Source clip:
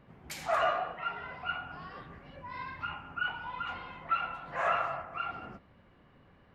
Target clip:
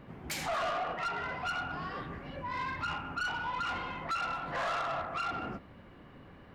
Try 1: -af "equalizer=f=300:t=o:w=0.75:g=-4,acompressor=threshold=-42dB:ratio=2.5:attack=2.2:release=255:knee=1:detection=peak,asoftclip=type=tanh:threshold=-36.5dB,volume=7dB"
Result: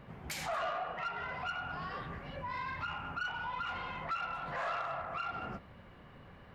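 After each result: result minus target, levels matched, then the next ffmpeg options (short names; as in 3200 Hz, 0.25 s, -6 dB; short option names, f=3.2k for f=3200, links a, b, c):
compressor: peak gain reduction +6 dB; 250 Hz band -2.0 dB
-af "equalizer=f=300:t=o:w=0.75:g=-4,acompressor=threshold=-32dB:ratio=2.5:attack=2.2:release=255:knee=1:detection=peak,asoftclip=type=tanh:threshold=-36.5dB,volume=7dB"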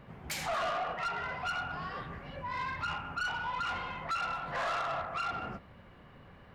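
250 Hz band -3.5 dB
-af "equalizer=f=300:t=o:w=0.75:g=3.5,acompressor=threshold=-32dB:ratio=2.5:attack=2.2:release=255:knee=1:detection=peak,asoftclip=type=tanh:threshold=-36.5dB,volume=7dB"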